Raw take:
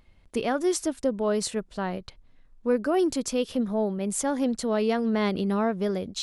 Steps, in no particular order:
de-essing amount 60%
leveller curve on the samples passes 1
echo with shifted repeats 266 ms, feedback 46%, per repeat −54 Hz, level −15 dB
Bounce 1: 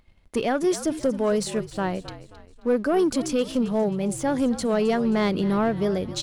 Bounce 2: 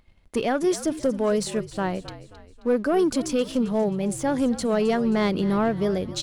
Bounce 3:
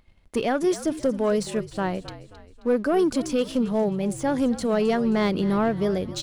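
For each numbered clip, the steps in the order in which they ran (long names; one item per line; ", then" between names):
de-essing, then echo with shifted repeats, then leveller curve on the samples
de-essing, then leveller curve on the samples, then echo with shifted repeats
leveller curve on the samples, then de-essing, then echo with shifted repeats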